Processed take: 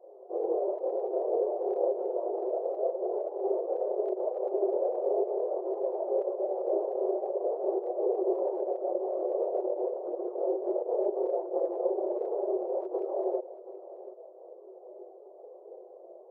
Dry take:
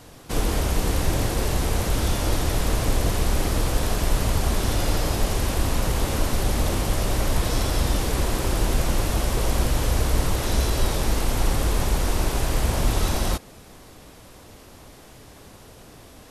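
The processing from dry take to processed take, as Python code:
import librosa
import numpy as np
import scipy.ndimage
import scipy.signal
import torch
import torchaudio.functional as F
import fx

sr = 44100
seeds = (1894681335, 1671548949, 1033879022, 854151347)

p1 = scipy.signal.sosfilt(scipy.signal.butter(6, 630.0, 'lowpass', fs=sr, output='sos'), x)
p2 = fx.notch(p1, sr, hz=450.0, q=12.0)
p3 = fx.over_compress(p2, sr, threshold_db=-22.0, ratio=-0.5)
p4 = fx.chorus_voices(p3, sr, voices=6, hz=0.18, base_ms=28, depth_ms=4.2, mix_pct=65)
p5 = fx.brickwall_highpass(p4, sr, low_hz=350.0)
p6 = p5 + fx.echo_single(p5, sr, ms=732, db=-15.5, dry=0)
y = p6 * librosa.db_to_amplitude(8.0)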